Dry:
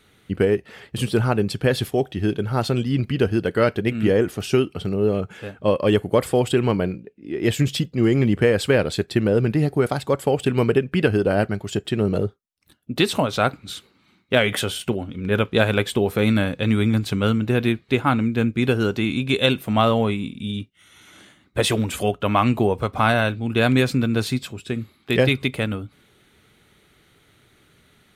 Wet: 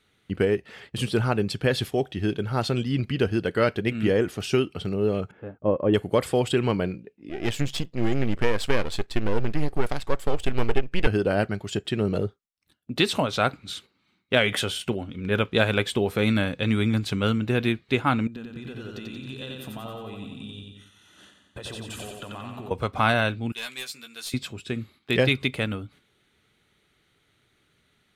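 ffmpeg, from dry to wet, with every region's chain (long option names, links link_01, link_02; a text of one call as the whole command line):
ffmpeg -i in.wav -filter_complex "[0:a]asettb=1/sr,asplit=3[link_01][link_02][link_03];[link_01]atrim=end=5.314[link_04];[link_02]atrim=start=5.31:end=5.94,asetpts=PTS-STARTPTS,afade=type=in:duration=0.004:curve=qsin,afade=type=out:start_time=0.626:duration=0.004:curve=qsin,agate=range=-33dB:threshold=-39dB:ratio=3:release=100:detection=peak,lowpass=1000,equalizer=frequency=310:width_type=o:width=0.29:gain=3.5[link_05];[link_03]atrim=start=5.936[link_06];[link_04][link_05]acrossfade=duration=0.004:curve1=hsin:curve2=qsin[link_07];[link_07][link_06]acrossfade=duration=0.004:curve1=qsin:curve2=hsin,asettb=1/sr,asplit=3[link_08][link_09][link_10];[link_08]atrim=end=7.294[link_11];[link_09]atrim=start=7.29:end=11.07,asetpts=PTS-STARTPTS,afade=type=in:duration=0.004:curve=qsin,afade=type=out:start_time=3.776:duration=0.004:curve=qsin,aeval=exprs='if(lt(val(0),0),0.251*val(0),val(0))':channel_layout=same,asubboost=boost=7.5:cutoff=58[link_12];[link_10]atrim=start=11.066[link_13];[link_11][link_12]acrossfade=duration=0.004:curve1=hsin:curve2=qsin[link_14];[link_14][link_13]acrossfade=duration=0.004:curve1=qsin:curve2=hsin,asettb=1/sr,asplit=3[link_15][link_16][link_17];[link_15]atrim=end=18.274[link_18];[link_16]atrim=start=18.27:end=22.71,asetpts=PTS-STARTPTS,afade=type=in:duration=0.004:curve=qsin,afade=type=out:start_time=4.436:duration=0.004:curve=qsin,acompressor=threshold=-31dB:ratio=20:attack=3.2:release=140:knee=1:detection=peak,asuperstop=centerf=2200:order=4:qfactor=6.9,aecho=1:1:90|180|270|360|450|540|630|720:0.708|0.396|0.222|0.124|0.0696|0.039|0.0218|0.0122,atrim=end_sample=195804[link_19];[link_17]atrim=start=22.706[link_20];[link_18][link_19]acrossfade=duration=0.004:curve1=hsin:curve2=qsin[link_21];[link_21][link_20]acrossfade=duration=0.004:curve1=qsin:curve2=hsin,asettb=1/sr,asplit=3[link_22][link_23][link_24];[link_22]atrim=end=23.524[link_25];[link_23]atrim=start=23.52:end=24.34,asetpts=PTS-STARTPTS,afade=type=in:duration=0.004:curve=qsin,afade=type=out:start_time=0.816:duration=0.004:curve=qsin,aderivative,aeval=exprs='clip(val(0),-1,0.0355)':channel_layout=same,asplit=2[link_26][link_27];[link_27]adelay=13,volume=-4.5dB[link_28];[link_26][link_28]amix=inputs=2:normalize=0,atrim=end_sample=36162[link_29];[link_24]atrim=start=24.336[link_30];[link_25][link_29]acrossfade=duration=0.004:curve1=hsin:curve2=qsin[link_31];[link_31][link_30]acrossfade=duration=0.004:curve1=qsin:curve2=hsin,aemphasis=mode=reproduction:type=50kf,agate=range=-7dB:threshold=-47dB:ratio=16:detection=peak,highshelf=frequency=2500:gain=10,volume=-4dB" out.wav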